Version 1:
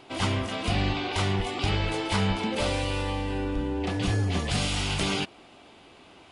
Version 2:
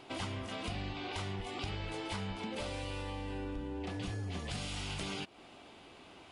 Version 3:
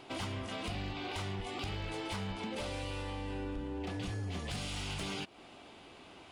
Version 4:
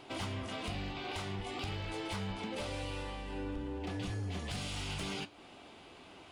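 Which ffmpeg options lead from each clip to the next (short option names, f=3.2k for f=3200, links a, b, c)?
-af "acompressor=threshold=-35dB:ratio=4,volume=-3dB"
-af "asoftclip=type=hard:threshold=-33.5dB,volume=1dB"
-af "flanger=delay=9.6:depth=5.8:regen=-69:speed=0.47:shape=sinusoidal,volume=4dB"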